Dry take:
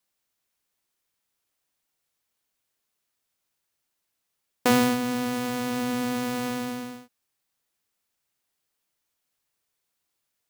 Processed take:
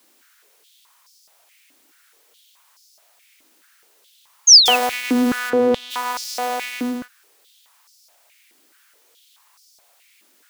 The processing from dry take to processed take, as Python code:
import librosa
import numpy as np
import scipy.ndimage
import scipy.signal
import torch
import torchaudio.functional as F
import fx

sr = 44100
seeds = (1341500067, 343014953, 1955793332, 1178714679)

p1 = (np.mod(10.0 ** (16.0 / 20.0) * x + 1.0, 2.0) - 1.0) / 10.0 ** (16.0 / 20.0)
p2 = x + (p1 * librosa.db_to_amplitude(-7.0))
p3 = fx.power_curve(p2, sr, exponent=0.7)
p4 = fx.spec_paint(p3, sr, seeds[0], shape='fall', start_s=4.47, length_s=0.29, low_hz=2500.0, high_hz=6700.0, level_db=-14.0)
p5 = fx.tilt_eq(p4, sr, slope=-4.5, at=(5.49, 5.9), fade=0.02)
p6 = fx.filter_held_highpass(p5, sr, hz=4.7, low_hz=290.0, high_hz=5100.0)
y = p6 * librosa.db_to_amplitude(-2.5)